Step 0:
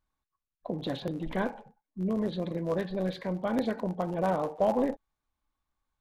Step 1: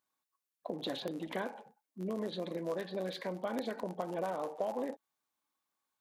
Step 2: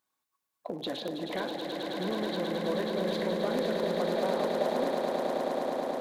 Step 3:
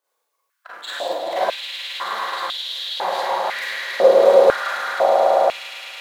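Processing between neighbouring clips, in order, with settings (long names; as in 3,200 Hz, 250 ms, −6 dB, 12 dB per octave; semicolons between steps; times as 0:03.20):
high-pass filter 270 Hz 12 dB per octave; high-shelf EQ 4,500 Hz +7.5 dB; downward compressor 6 to 1, threshold −31 dBFS, peak gain reduction 9.5 dB; level −1.5 dB
in parallel at −7.5 dB: gain into a clipping stage and back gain 33 dB; on the sum: echo that builds up and dies away 107 ms, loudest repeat 8, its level −7 dB
gain on one half-wave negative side −12 dB; four-comb reverb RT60 0.6 s, combs from 32 ms, DRR −6 dB; high-pass on a step sequencer 2 Hz 500–3,400 Hz; level +4.5 dB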